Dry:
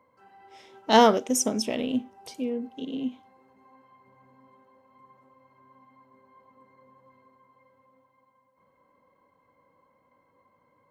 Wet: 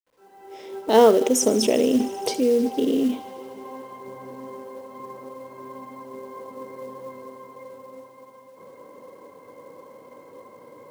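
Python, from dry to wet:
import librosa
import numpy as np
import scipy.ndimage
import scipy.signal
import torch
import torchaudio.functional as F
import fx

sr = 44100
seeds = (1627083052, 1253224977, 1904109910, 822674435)

p1 = fx.fade_in_head(x, sr, length_s=1.86)
p2 = scipy.signal.sosfilt(scipy.signal.butter(2, 100.0, 'highpass', fs=sr, output='sos'), p1)
p3 = fx.peak_eq(p2, sr, hz=420.0, db=13.5, octaves=1.1)
p4 = fx.over_compress(p3, sr, threshold_db=-33.0, ratio=-1.0)
p5 = p3 + (p4 * librosa.db_to_amplitude(2.0))
p6 = fx.quant_companded(p5, sr, bits=6)
y = p6 + fx.echo_wet_highpass(p6, sr, ms=77, feedback_pct=83, hz=1700.0, wet_db=-16.0, dry=0)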